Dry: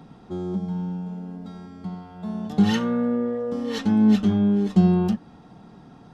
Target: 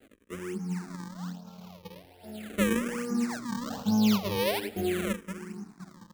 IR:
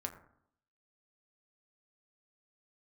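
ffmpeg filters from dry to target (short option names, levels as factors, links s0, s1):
-filter_complex "[0:a]flanger=delay=18.5:depth=5.9:speed=1,asplit=2[s0][s1];[s1]adelay=514,lowpass=f=1100:p=1,volume=0.211,asplit=2[s2][s3];[s3]adelay=514,lowpass=f=1100:p=1,volume=0.41,asplit=2[s4][s5];[s5]adelay=514,lowpass=f=1100:p=1,volume=0.41,asplit=2[s6][s7];[s7]adelay=514,lowpass=f=1100:p=1,volume=0.41[s8];[s2][s4][s6][s8]amix=inputs=4:normalize=0[s9];[s0][s9]amix=inputs=2:normalize=0,acrusher=samples=36:mix=1:aa=0.000001:lfo=1:lforange=57.6:lforate=1.2,asplit=2[s10][s11];[s11]aecho=0:1:176:0.0841[s12];[s10][s12]amix=inputs=2:normalize=0,aeval=exprs='sgn(val(0))*max(abs(val(0))-0.00266,0)':c=same,lowshelf=f=84:g=-8,asplit=2[s13][s14];[s14]afreqshift=-0.41[s15];[s13][s15]amix=inputs=2:normalize=1"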